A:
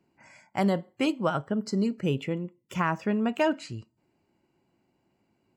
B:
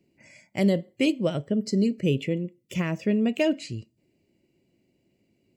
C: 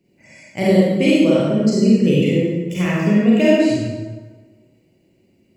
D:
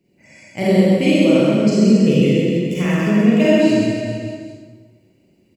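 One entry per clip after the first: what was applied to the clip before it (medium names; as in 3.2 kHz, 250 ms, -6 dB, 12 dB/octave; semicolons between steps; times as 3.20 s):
high-order bell 1.1 kHz -16 dB 1.3 oct; trim +3.5 dB
reverberation RT60 1.4 s, pre-delay 27 ms, DRR -8 dB; trim +1.5 dB
reverse bouncing-ball echo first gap 130 ms, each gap 1.1×, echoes 5; trim -1 dB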